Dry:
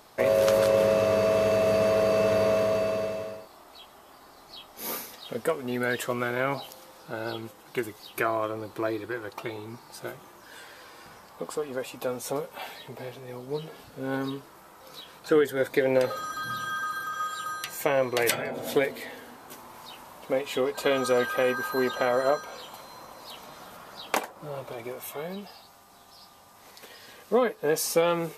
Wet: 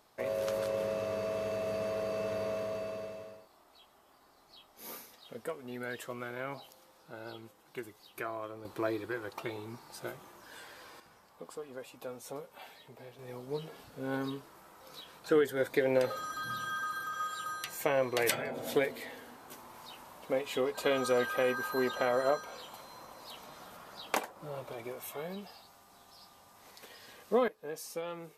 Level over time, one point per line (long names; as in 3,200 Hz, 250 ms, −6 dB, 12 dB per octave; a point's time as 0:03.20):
−12 dB
from 0:08.65 −4 dB
from 0:11.00 −12 dB
from 0:13.19 −5 dB
from 0:27.48 −16 dB